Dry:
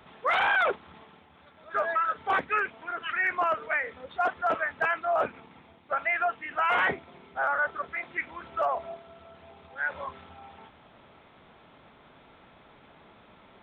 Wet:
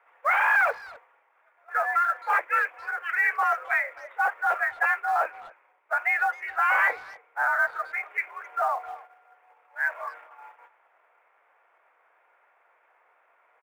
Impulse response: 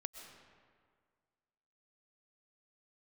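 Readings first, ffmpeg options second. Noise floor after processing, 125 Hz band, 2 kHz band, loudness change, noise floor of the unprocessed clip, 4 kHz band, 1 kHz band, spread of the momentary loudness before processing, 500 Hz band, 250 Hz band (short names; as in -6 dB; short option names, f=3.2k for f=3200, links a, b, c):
-66 dBFS, under -15 dB, +4.5 dB, +3.0 dB, -57 dBFS, n/a, +2.5 dB, 12 LU, -4.0 dB, under -15 dB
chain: -filter_complex "[0:a]agate=range=-9dB:threshold=-48dB:ratio=16:detection=peak,tiltshelf=f=1.1k:g=-4,highpass=f=430:t=q:w=0.5412,highpass=f=430:t=q:w=1.307,lowpass=f=2.2k:t=q:w=0.5176,lowpass=f=2.2k:t=q:w=0.7071,lowpass=f=2.2k:t=q:w=1.932,afreqshift=70,asplit=2[a][b];[b]acrusher=bits=4:mode=log:mix=0:aa=0.000001,volume=-9.5dB[c];[a][c]amix=inputs=2:normalize=0,asplit=2[d][e];[e]adelay=260,highpass=300,lowpass=3.4k,asoftclip=type=hard:threshold=-21dB,volume=-20dB[f];[d][f]amix=inputs=2:normalize=0"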